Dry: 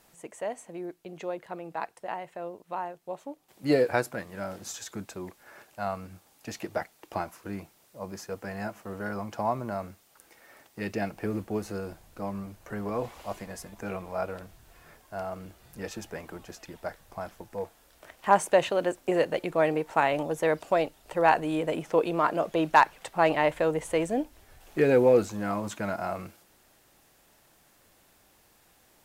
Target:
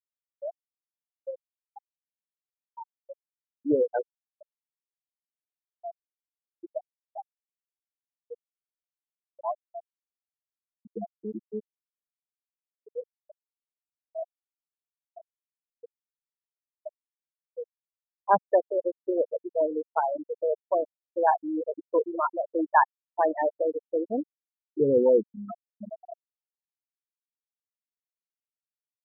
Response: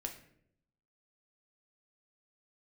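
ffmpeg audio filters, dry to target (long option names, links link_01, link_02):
-af "aecho=1:1:161|322|483|644:0.1|0.05|0.025|0.0125,afftfilt=real='re*gte(hypot(re,im),0.251)':imag='im*gte(hypot(re,im),0.251)':win_size=1024:overlap=0.75"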